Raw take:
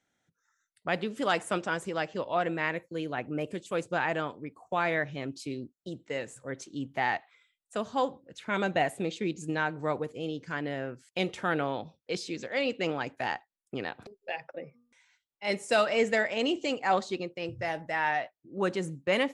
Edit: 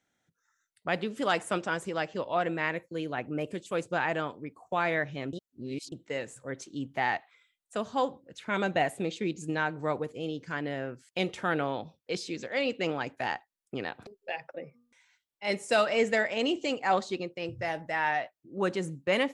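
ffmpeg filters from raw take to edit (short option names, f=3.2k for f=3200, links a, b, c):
-filter_complex "[0:a]asplit=3[a][b][c];[a]atrim=end=5.332[d];[b]atrim=start=5.328:end=5.922,asetpts=PTS-STARTPTS,areverse[e];[c]atrim=start=5.918[f];[d][e]acrossfade=d=0.004:c1=hsin:c2=hsin[g];[g][f]acrossfade=d=0.004:c1=hsin:c2=hsin"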